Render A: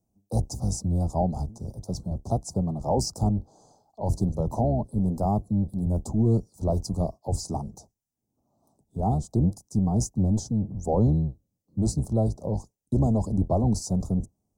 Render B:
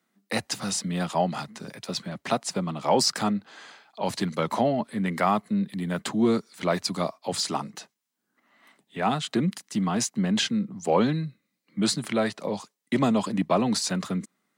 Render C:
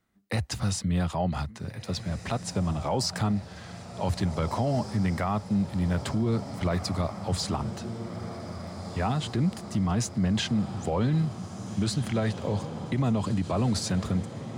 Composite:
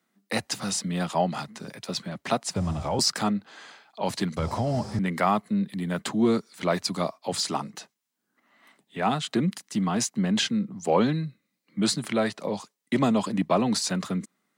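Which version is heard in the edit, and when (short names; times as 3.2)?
B
2.56–2.99 from C
4.37–4.99 from C
not used: A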